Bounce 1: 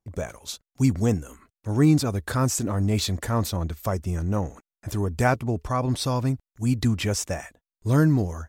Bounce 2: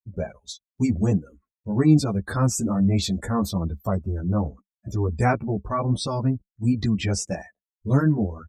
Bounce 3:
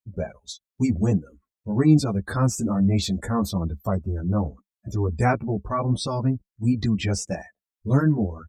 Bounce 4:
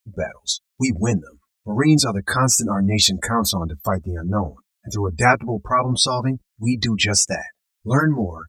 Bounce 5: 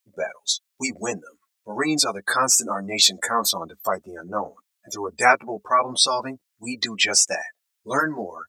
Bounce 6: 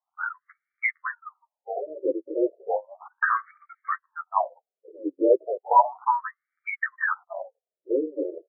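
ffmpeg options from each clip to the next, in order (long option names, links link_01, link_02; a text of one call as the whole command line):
ffmpeg -i in.wav -filter_complex "[0:a]afftdn=noise_reduction=32:noise_floor=-36,equalizer=frequency=200:width=5.4:gain=8,asplit=2[link_01][link_02];[link_02]adelay=11.1,afreqshift=-2.9[link_03];[link_01][link_03]amix=inputs=2:normalize=1,volume=3dB" out.wav
ffmpeg -i in.wav -af "deesser=0.5" out.wav
ffmpeg -i in.wav -af "tiltshelf=frequency=880:gain=-7.5,volume=7.5dB" out.wav
ffmpeg -i in.wav -af "highpass=460" out.wav
ffmpeg -i in.wav -af "acontrast=63,highpass=frequency=370:width_type=q:width=0.5412,highpass=frequency=370:width_type=q:width=1.307,lowpass=frequency=3200:width_type=q:width=0.5176,lowpass=frequency=3200:width_type=q:width=0.7071,lowpass=frequency=3200:width_type=q:width=1.932,afreqshift=-160,afftfilt=real='re*between(b*sr/1024,410*pow(1700/410,0.5+0.5*sin(2*PI*0.34*pts/sr))/1.41,410*pow(1700/410,0.5+0.5*sin(2*PI*0.34*pts/sr))*1.41)':imag='im*between(b*sr/1024,410*pow(1700/410,0.5+0.5*sin(2*PI*0.34*pts/sr))/1.41,410*pow(1700/410,0.5+0.5*sin(2*PI*0.34*pts/sr))*1.41)':win_size=1024:overlap=0.75" out.wav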